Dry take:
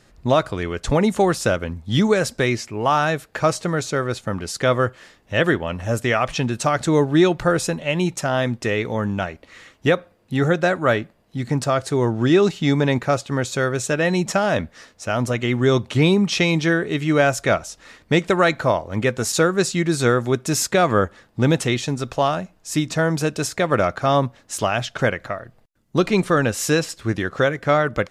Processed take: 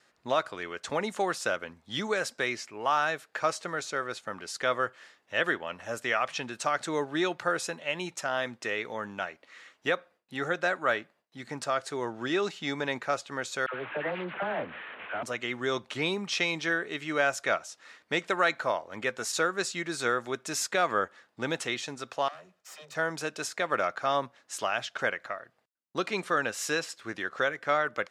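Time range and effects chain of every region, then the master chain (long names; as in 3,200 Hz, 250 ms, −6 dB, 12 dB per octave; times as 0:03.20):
0:13.66–0:15.23: linear delta modulator 16 kbit/s, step −28.5 dBFS + all-pass dispersion lows, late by 76 ms, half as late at 900 Hz + highs frequency-modulated by the lows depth 0.25 ms
0:22.28–0:22.95: lower of the sound and its delayed copy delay 1.6 ms + downward compressor 3 to 1, threshold −36 dBFS + all-pass dispersion lows, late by 83 ms, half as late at 320 Hz
whole clip: meter weighting curve A; noise gate with hold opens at −52 dBFS; parametric band 1,500 Hz +2.5 dB; level −8.5 dB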